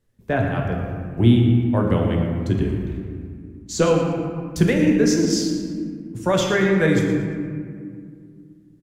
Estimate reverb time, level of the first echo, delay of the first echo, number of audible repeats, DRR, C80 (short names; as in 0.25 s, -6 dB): 2.2 s, -11.5 dB, 0.115 s, 1, 0.0 dB, 3.5 dB